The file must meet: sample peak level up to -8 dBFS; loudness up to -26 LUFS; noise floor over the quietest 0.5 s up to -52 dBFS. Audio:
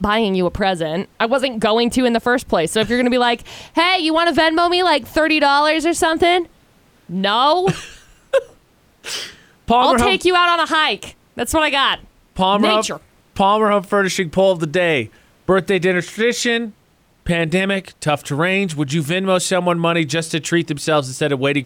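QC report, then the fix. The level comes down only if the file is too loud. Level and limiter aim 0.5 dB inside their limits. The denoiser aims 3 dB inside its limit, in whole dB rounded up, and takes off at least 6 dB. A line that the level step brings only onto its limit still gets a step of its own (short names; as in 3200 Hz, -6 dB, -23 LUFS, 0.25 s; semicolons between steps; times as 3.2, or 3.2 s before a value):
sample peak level -5.0 dBFS: fail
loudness -17.0 LUFS: fail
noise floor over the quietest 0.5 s -56 dBFS: OK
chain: gain -9.5 dB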